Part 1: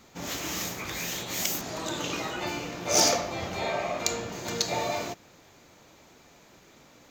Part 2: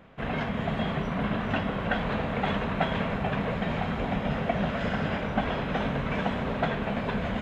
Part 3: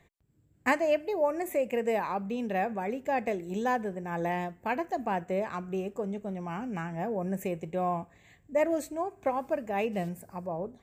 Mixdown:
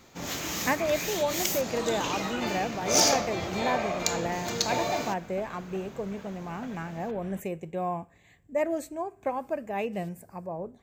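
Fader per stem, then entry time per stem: 0.0 dB, -18.0 dB, -1.0 dB; 0.00 s, 0.00 s, 0.00 s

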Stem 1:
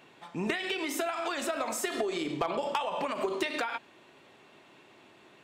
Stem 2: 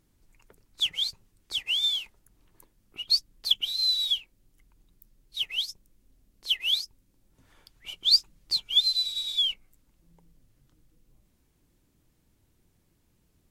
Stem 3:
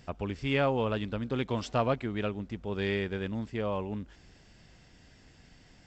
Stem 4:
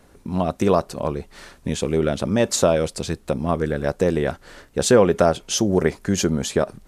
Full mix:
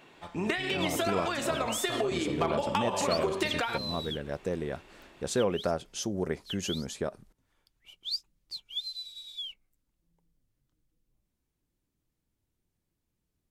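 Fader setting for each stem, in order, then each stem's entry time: +1.0 dB, -13.5 dB, -12.0 dB, -13.0 dB; 0.00 s, 0.00 s, 0.15 s, 0.45 s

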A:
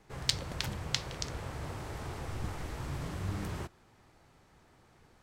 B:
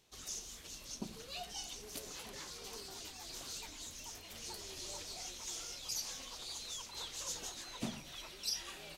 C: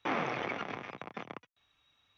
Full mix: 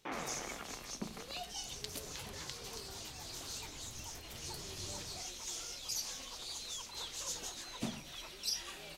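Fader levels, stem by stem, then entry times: -15.5 dB, +1.0 dB, -9.0 dB; 1.55 s, 0.00 s, 0.00 s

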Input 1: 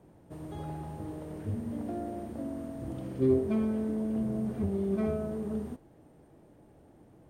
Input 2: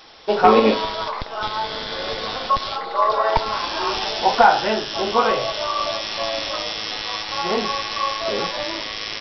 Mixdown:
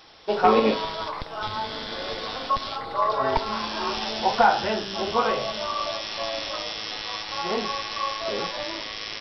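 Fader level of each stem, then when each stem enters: -9.5 dB, -5.0 dB; 0.00 s, 0.00 s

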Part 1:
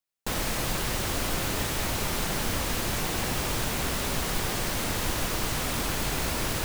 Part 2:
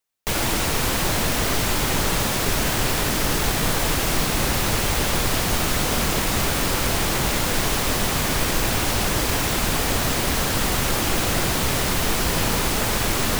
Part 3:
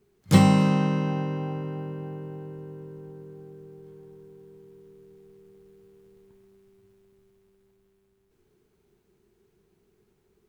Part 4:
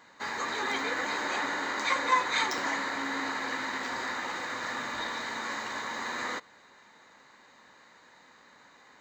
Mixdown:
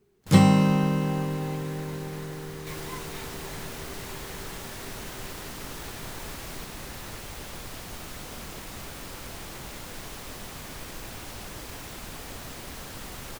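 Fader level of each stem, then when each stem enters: -16.0 dB, -18.0 dB, 0.0 dB, -18.0 dB; 0.00 s, 2.40 s, 0.00 s, 0.80 s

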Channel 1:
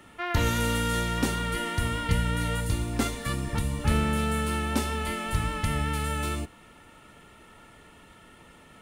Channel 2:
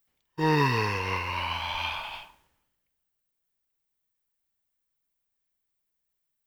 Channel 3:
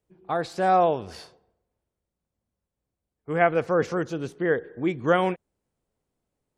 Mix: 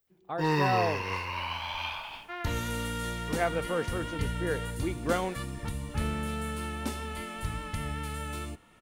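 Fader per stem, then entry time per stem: -7.0 dB, -3.5 dB, -8.5 dB; 2.10 s, 0.00 s, 0.00 s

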